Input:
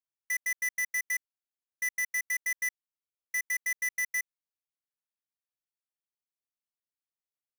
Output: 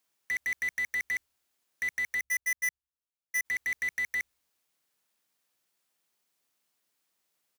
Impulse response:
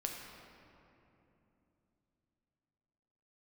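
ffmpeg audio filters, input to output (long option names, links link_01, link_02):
-filter_complex "[0:a]asplit=3[link_01][link_02][link_03];[link_01]afade=type=out:start_time=2.19:duration=0.02[link_04];[link_02]agate=range=-20dB:threshold=-30dB:ratio=16:detection=peak,afade=type=in:start_time=2.19:duration=0.02,afade=type=out:start_time=3.44:duration=0.02[link_05];[link_03]afade=type=in:start_time=3.44:duration=0.02[link_06];[link_04][link_05][link_06]amix=inputs=3:normalize=0,acrossover=split=120[link_07][link_08];[link_07]aecho=1:1:96|192|288|384|480:0.168|0.0856|0.0437|0.0223|0.0114[link_09];[link_08]aeval=exprs='0.0473*sin(PI/2*4.47*val(0)/0.0473)':channel_layout=same[link_10];[link_09][link_10]amix=inputs=2:normalize=0"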